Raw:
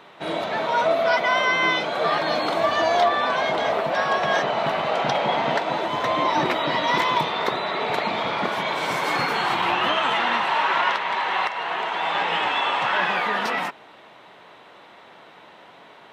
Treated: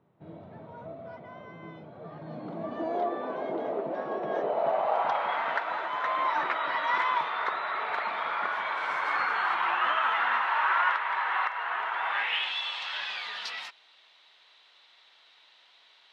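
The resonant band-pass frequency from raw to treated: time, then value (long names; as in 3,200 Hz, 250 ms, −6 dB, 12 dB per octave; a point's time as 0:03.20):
resonant band-pass, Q 2.1
0:02.10 100 Hz
0:02.97 340 Hz
0:04.24 340 Hz
0:05.32 1,400 Hz
0:12.08 1,400 Hz
0:12.56 4,300 Hz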